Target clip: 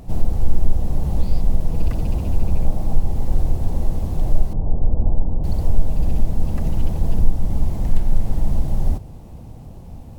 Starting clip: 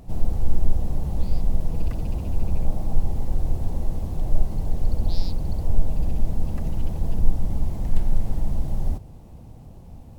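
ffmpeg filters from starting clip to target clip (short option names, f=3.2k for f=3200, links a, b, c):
-filter_complex "[0:a]asettb=1/sr,asplit=3[a][b][c];[a]atrim=end=4.534[d];[b]atrim=start=4.53:end=5.44,asetpts=PTS-STARTPTS,afade=t=in:d=0.004:c=qsin,afade=t=out:st=0.906:d=0.004:c=qsin,lowpass=f=1k:w=0.5412,lowpass=f=1k:w=1.3066[e];[c]atrim=start=5.436[f];[d][e]acrossfade=d=0.004:c1=hsin:c2=qsin[g];[g][f]acrossfade=d=0.004:c1=qsin:c2=hsin,asplit=2[h][i];[i]alimiter=limit=-12dB:level=0:latency=1:release=412,volume=1dB[j];[h][j]amix=inputs=2:normalize=0,volume=-1dB"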